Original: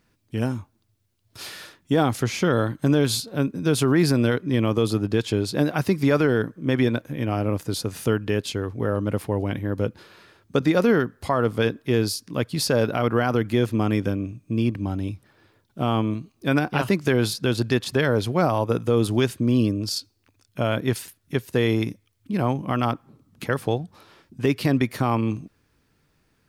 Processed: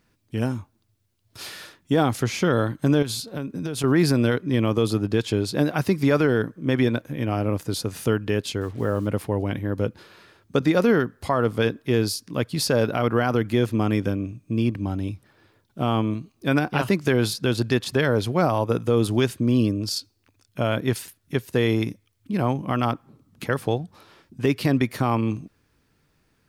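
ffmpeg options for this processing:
-filter_complex "[0:a]asettb=1/sr,asplit=3[a][b][c];[a]atrim=end=3.024[d];[b]atrim=start=3.02:end=3.84,asetpts=PTS-STARTPTS,afade=t=in:d=0.004:c=qsin,afade=t=out:st=0.816:d=0.004:c=qsin,acompressor=threshold=-24dB:ratio=12:attack=3.2:release=140:knee=1:detection=peak[e];[c]atrim=start=3.836[f];[d][e]acrossfade=d=0.004:c1=hsin:c2=qsin[g];[g][f]acrossfade=d=0.004:c1=qsin:c2=hsin,asettb=1/sr,asplit=3[h][i][j];[h]atrim=end=8.614[k];[i]atrim=start=8.61:end=9.07,asetpts=PTS-STARTPTS,afade=t=in:d=0.004:c=qsin,afade=t=out:st=0.456:d=0.004:c=qsin,acrusher=bits=7:mix=0:aa=0.5[l];[j]atrim=start=9.066[m];[k][l]acrossfade=d=0.004:c1=hsin:c2=qsin[n];[n][m]acrossfade=d=0.004:c1=qsin:c2=hsin"

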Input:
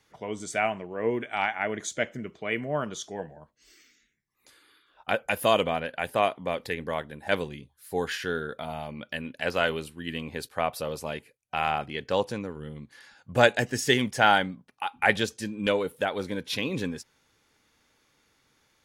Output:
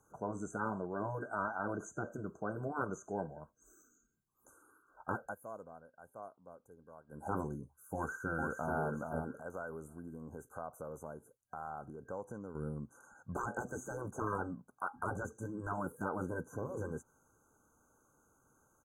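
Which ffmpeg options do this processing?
-filter_complex "[0:a]asplit=2[a][b];[b]afade=t=in:st=7.95:d=0.01,afade=t=out:st=8.81:d=0.01,aecho=0:1:430|860|1290:0.473151|0.118288|0.029572[c];[a][c]amix=inputs=2:normalize=0,asettb=1/sr,asplit=3[d][e][f];[d]atrim=end=9.394[g];[e]atrim=start=9.39:end=12.55,asetpts=PTS-STARTPTS,afade=t=in:d=0.004:c=qsin,afade=t=out:st=3.156:d=0.004:c=qsin,acompressor=threshold=-45dB:ratio=2.5:attack=3.2:release=140:knee=1:detection=peak[h];[f]atrim=start=12.546[i];[g][h]acrossfade=d=0.004:c1=hsin:c2=qsin[j];[j][i]acrossfade=d=0.004:c1=qsin:c2=hsin,asplit=3[k][l][m];[k]atrim=end=5.35,asetpts=PTS-STARTPTS,afade=t=out:st=5.18:d=0.17:silence=0.0668344[n];[l]atrim=start=5.35:end=7.07,asetpts=PTS-STARTPTS,volume=-23.5dB[o];[m]atrim=start=7.07,asetpts=PTS-STARTPTS,afade=t=in:d=0.17:silence=0.0668344[p];[n][o][p]concat=n=3:v=0:a=1,afftfilt=real='re*lt(hypot(re,im),0.141)':imag='im*lt(hypot(re,im),0.141)':win_size=1024:overlap=0.75,acrossover=split=3900[q][r];[r]acompressor=threshold=-55dB:ratio=4:attack=1:release=60[s];[q][s]amix=inputs=2:normalize=0,afftfilt=real='re*(1-between(b*sr/4096,1600,6000))':imag='im*(1-between(b*sr/4096,1600,6000))':win_size=4096:overlap=0.75,volume=-1dB"

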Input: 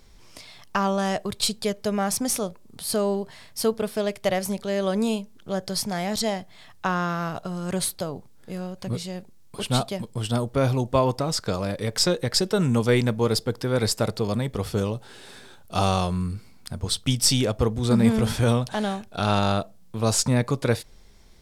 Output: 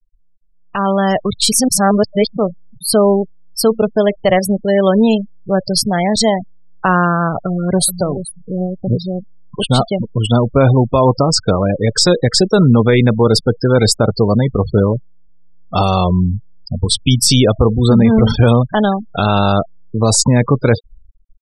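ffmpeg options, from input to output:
-filter_complex "[0:a]asplit=2[a][b];[b]afade=t=in:st=7.35:d=0.01,afade=t=out:st=7.88:d=0.01,aecho=0:1:430|860|1290:0.334965|0.10049|0.0301469[c];[a][c]amix=inputs=2:normalize=0,asplit=3[d][e][f];[d]atrim=end=1.522[g];[e]atrim=start=1.518:end=2.372,asetpts=PTS-STARTPTS,areverse[h];[f]atrim=start=2.368[i];[g][h]acrossfade=d=0.004:c1=hsin:c2=hsin[j];[j][i]acrossfade=d=0.004:c1=hsin:c2=hsin,afftfilt=real='re*gte(hypot(re,im),0.0447)':imag='im*gte(hypot(re,im),0.0447)':win_size=1024:overlap=0.75,alimiter=limit=-15.5dB:level=0:latency=1:release=19,dynaudnorm=f=350:g=5:m=14.5dB"

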